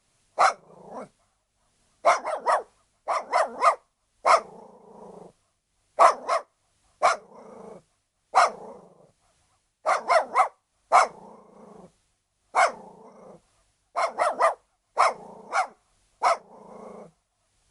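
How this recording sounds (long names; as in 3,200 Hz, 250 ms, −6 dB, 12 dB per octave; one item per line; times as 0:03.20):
a quantiser's noise floor 12 bits, dither triangular
tremolo triangle 1.2 Hz, depth 75%
MP3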